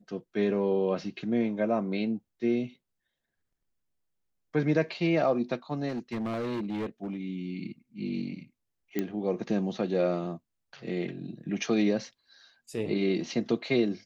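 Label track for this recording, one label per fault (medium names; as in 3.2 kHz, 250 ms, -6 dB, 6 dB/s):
5.880000	7.160000	clipped -29 dBFS
8.990000	8.990000	pop -16 dBFS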